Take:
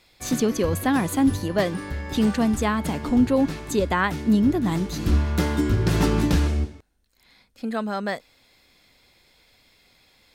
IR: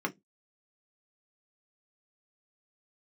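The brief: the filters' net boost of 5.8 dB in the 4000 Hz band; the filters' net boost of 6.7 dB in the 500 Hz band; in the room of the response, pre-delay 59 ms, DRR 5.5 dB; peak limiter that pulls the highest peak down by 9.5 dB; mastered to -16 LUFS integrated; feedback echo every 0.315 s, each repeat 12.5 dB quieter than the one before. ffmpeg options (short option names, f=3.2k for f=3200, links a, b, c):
-filter_complex "[0:a]equalizer=f=500:t=o:g=8,equalizer=f=4k:t=o:g=7,alimiter=limit=-14dB:level=0:latency=1,aecho=1:1:315|630|945:0.237|0.0569|0.0137,asplit=2[a][b];[1:a]atrim=start_sample=2205,adelay=59[c];[b][c]afir=irnorm=-1:irlink=0,volume=-11.5dB[d];[a][d]amix=inputs=2:normalize=0,volume=5.5dB"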